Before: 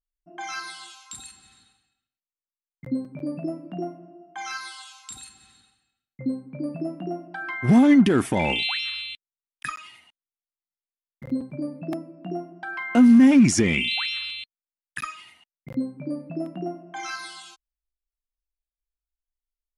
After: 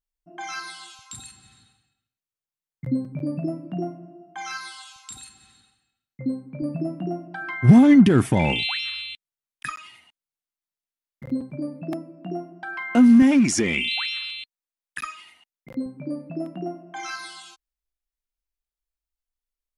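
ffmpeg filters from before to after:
ffmpeg -i in.wav -af "asetnsamples=nb_out_samples=441:pad=0,asendcmd='0.99 equalizer g 10.5;4.96 equalizer g 2.5;6.62 equalizer g 10;8.64 equalizer g 1.5;13.22 equalizer g -9;15.86 equalizer g 0',equalizer=frequency=120:width_type=o:width=1.3:gain=4.5" out.wav

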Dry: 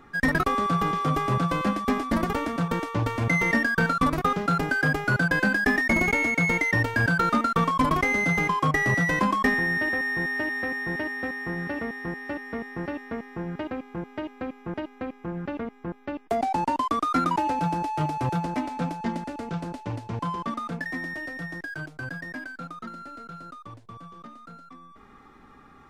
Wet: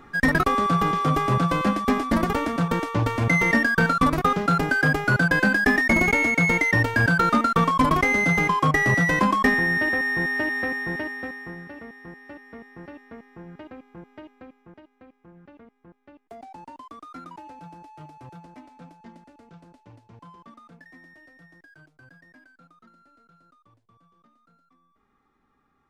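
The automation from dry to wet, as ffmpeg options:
ffmpeg -i in.wav -af "volume=3dB,afade=type=out:start_time=10.61:duration=1.05:silence=0.237137,afade=type=out:start_time=14.17:duration=0.64:silence=0.398107" out.wav

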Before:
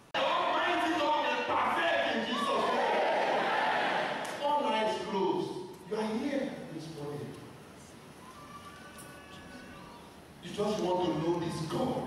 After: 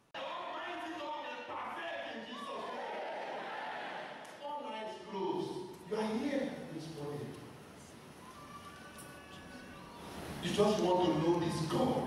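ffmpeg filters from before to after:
ffmpeg -i in.wav -af "volume=9dB,afade=type=in:start_time=5.02:duration=0.53:silence=0.316228,afade=type=in:start_time=9.94:duration=0.37:silence=0.266073,afade=type=out:start_time=10.31:duration=0.42:silence=0.354813" out.wav

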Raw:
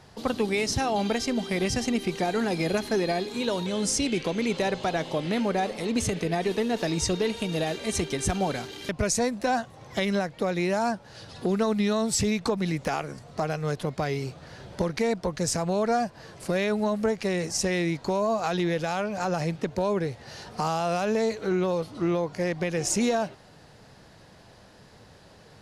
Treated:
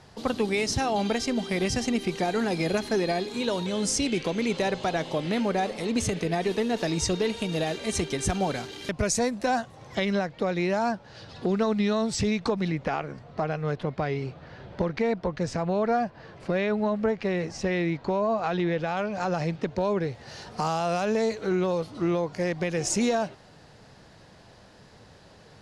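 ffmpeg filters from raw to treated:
ffmpeg -i in.wav -af "asetnsamples=nb_out_samples=441:pad=0,asendcmd='9.95 lowpass f 5300;12.68 lowpass f 3100;18.97 lowpass f 5200;20.15 lowpass f 9400',lowpass=11000" out.wav

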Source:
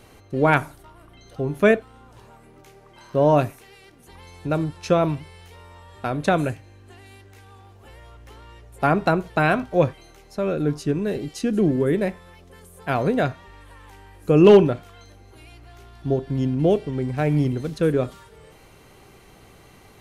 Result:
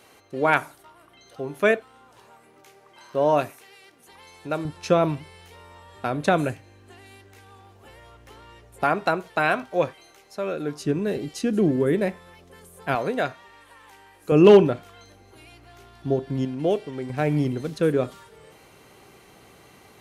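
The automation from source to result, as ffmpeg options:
ffmpeg -i in.wav -af "asetnsamples=nb_out_samples=441:pad=0,asendcmd='4.65 highpass f 140;8.84 highpass f 570;10.8 highpass f 130;12.95 highpass f 550;14.32 highpass f 150;16.45 highpass f 480;17.1 highpass f 170',highpass=frequency=530:poles=1" out.wav

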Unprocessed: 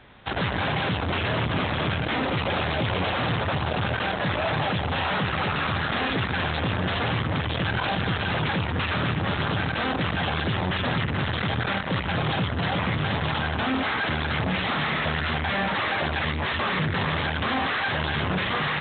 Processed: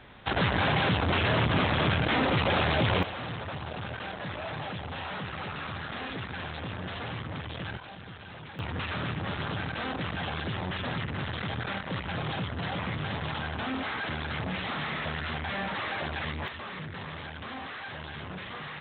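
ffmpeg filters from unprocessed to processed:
ffmpeg -i in.wav -af "asetnsamples=nb_out_samples=441:pad=0,asendcmd='3.03 volume volume -11dB;7.77 volume volume -19dB;8.59 volume volume -7.5dB;16.48 volume volume -14dB',volume=0dB" out.wav

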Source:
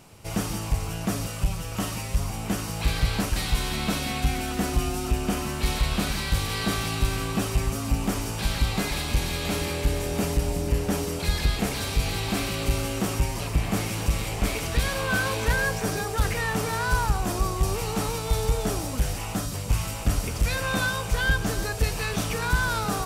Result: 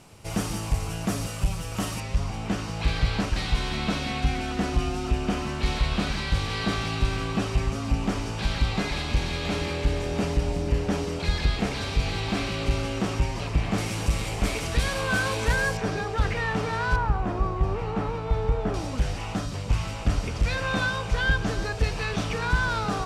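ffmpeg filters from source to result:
ffmpeg -i in.wav -af "asetnsamples=nb_out_samples=441:pad=0,asendcmd='2 lowpass f 5000;13.78 lowpass f 8900;15.77 lowpass f 3900;16.96 lowpass f 1900;18.74 lowpass f 4800',lowpass=11000" out.wav

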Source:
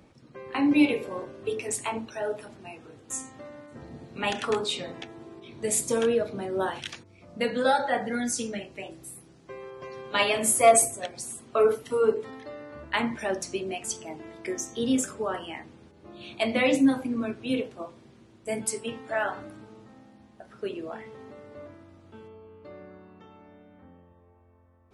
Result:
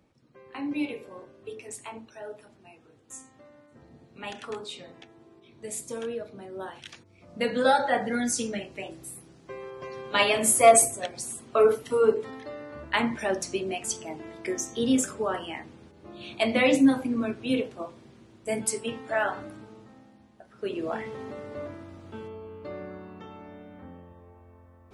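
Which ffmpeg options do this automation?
ffmpeg -i in.wav -af "volume=13.5dB,afade=type=in:start_time=6.77:duration=0.86:silence=0.281838,afade=type=out:start_time=19.52:duration=1.01:silence=0.473151,afade=type=in:start_time=20.53:duration=0.42:silence=0.251189" out.wav

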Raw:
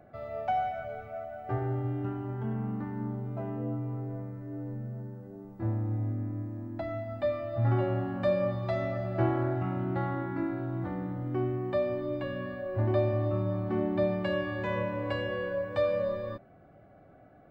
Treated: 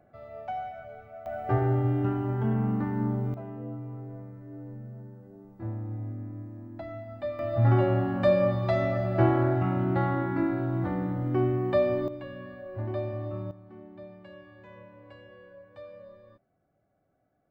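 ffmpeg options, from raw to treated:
ffmpeg -i in.wav -af "asetnsamples=nb_out_samples=441:pad=0,asendcmd='1.26 volume volume 6.5dB;3.34 volume volume -4dB;7.39 volume volume 5dB;12.08 volume volume -5.5dB;13.51 volume volume -18dB',volume=-5.5dB" out.wav

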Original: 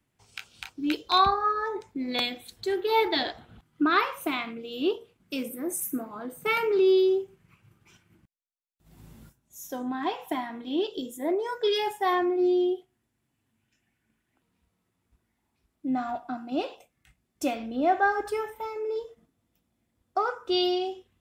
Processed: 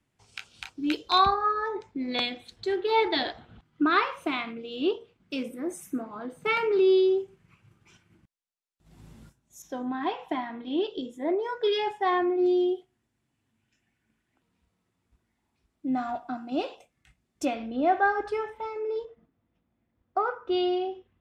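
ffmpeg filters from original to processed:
ffmpeg -i in.wav -af "asetnsamples=nb_out_samples=441:pad=0,asendcmd='1.34 lowpass f 5300;7.18 lowpass f 9000;9.62 lowpass f 3800;12.46 lowpass f 8900;17.45 lowpass f 4200;19.05 lowpass f 2300',lowpass=9600" out.wav

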